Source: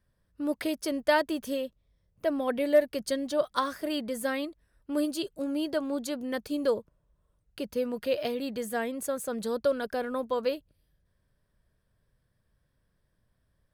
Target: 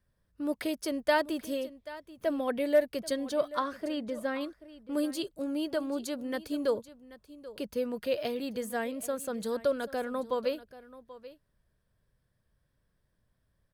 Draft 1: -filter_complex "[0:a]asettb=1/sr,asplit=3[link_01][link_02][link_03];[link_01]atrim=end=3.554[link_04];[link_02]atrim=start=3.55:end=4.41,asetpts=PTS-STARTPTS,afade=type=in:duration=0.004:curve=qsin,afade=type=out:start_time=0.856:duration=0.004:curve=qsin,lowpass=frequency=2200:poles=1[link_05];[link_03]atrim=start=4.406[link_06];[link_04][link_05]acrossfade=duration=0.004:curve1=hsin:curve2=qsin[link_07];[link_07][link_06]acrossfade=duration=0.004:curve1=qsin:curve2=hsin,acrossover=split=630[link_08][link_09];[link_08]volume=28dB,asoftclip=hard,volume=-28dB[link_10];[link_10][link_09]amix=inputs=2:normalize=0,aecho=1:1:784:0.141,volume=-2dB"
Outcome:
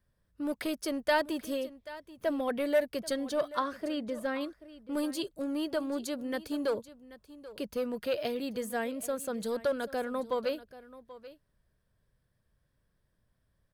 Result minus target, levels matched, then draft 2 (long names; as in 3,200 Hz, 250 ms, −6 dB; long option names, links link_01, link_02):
gain into a clipping stage and back: distortion +19 dB
-filter_complex "[0:a]asettb=1/sr,asplit=3[link_01][link_02][link_03];[link_01]atrim=end=3.554[link_04];[link_02]atrim=start=3.55:end=4.41,asetpts=PTS-STARTPTS,afade=type=in:duration=0.004:curve=qsin,afade=type=out:start_time=0.856:duration=0.004:curve=qsin,lowpass=frequency=2200:poles=1[link_05];[link_03]atrim=start=4.406[link_06];[link_04][link_05]acrossfade=duration=0.004:curve1=hsin:curve2=qsin[link_07];[link_07][link_06]acrossfade=duration=0.004:curve1=qsin:curve2=hsin,acrossover=split=630[link_08][link_09];[link_08]volume=19.5dB,asoftclip=hard,volume=-19.5dB[link_10];[link_10][link_09]amix=inputs=2:normalize=0,aecho=1:1:784:0.141,volume=-2dB"